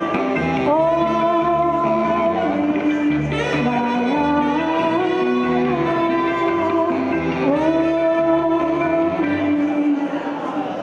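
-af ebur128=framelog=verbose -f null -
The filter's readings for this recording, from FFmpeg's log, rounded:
Integrated loudness:
  I:         -18.6 LUFS
  Threshold: -28.6 LUFS
Loudness range:
  LRA:         0.6 LU
  Threshold: -38.5 LUFS
  LRA low:   -18.8 LUFS
  LRA high:  -18.2 LUFS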